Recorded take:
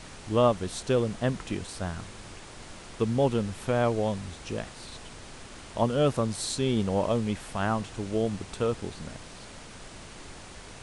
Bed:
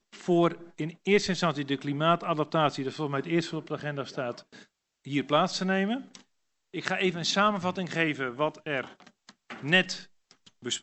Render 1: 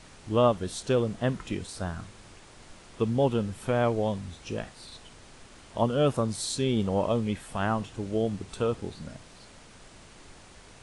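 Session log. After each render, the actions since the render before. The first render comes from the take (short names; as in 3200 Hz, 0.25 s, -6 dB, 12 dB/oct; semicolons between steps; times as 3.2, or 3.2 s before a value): noise print and reduce 6 dB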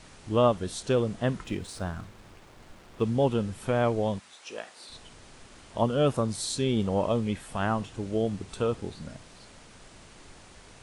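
1.44–3.05 backlash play -50 dBFS; 4.18–4.89 HPF 980 Hz -> 320 Hz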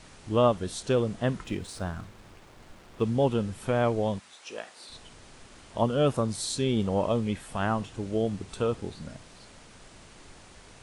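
nothing audible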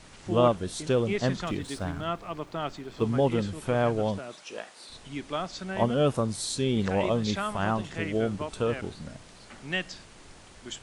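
add bed -8 dB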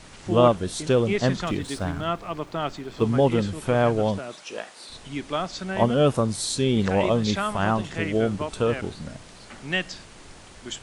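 gain +4.5 dB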